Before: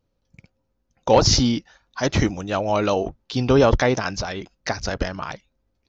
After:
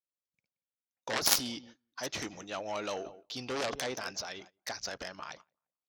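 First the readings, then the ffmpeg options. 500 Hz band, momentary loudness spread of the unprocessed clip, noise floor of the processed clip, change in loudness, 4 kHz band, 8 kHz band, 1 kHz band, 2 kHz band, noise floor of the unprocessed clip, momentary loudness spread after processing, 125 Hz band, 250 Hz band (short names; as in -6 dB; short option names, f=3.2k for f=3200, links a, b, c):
-18.5 dB, 16 LU, under -85 dBFS, -13.5 dB, -9.0 dB, n/a, -15.0 dB, -10.5 dB, -73 dBFS, 18 LU, -27.5 dB, -20.5 dB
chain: -filter_complex "[0:a]highshelf=f=3.3k:g=9,asplit=2[a][b];[b]adelay=176,lowpass=f=1.4k:p=1,volume=-16dB,asplit=2[c][d];[d]adelay=176,lowpass=f=1.4k:p=1,volume=0.31,asplit=2[e][f];[f]adelay=176,lowpass=f=1.4k:p=1,volume=0.31[g];[c][e][g]amix=inputs=3:normalize=0[h];[a][h]amix=inputs=2:normalize=0,aeval=exprs='1*(cos(1*acos(clip(val(0)/1,-1,1)))-cos(1*PI/2))+0.447*(cos(3*acos(clip(val(0)/1,-1,1)))-cos(3*PI/2))+0.0316*(cos(6*acos(clip(val(0)/1,-1,1)))-cos(6*PI/2))+0.02*(cos(8*acos(clip(val(0)/1,-1,1)))-cos(8*PI/2))':c=same,highpass=f=460:p=1,agate=range=-19dB:threshold=-49dB:ratio=16:detection=peak,volume=-3dB"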